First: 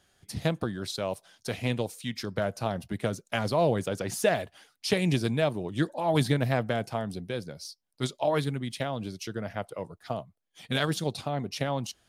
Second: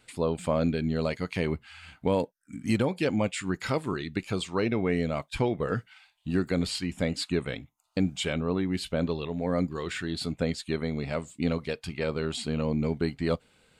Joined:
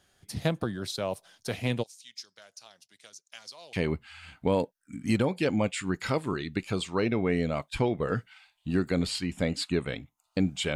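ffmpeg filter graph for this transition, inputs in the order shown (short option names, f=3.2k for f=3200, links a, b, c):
-filter_complex "[0:a]asplit=3[a][b][c];[a]afade=t=out:st=1.82:d=0.02[d];[b]bandpass=f=5.9k:t=q:w=2.1:csg=0,afade=t=in:st=1.82:d=0.02,afade=t=out:st=3.73:d=0.02[e];[c]afade=t=in:st=3.73:d=0.02[f];[d][e][f]amix=inputs=3:normalize=0,apad=whole_dur=10.75,atrim=end=10.75,atrim=end=3.732[g];[1:a]atrim=start=1.328:end=8.35[h];[g][h]acrossfade=d=0.004:c1=hsin:c2=hsin"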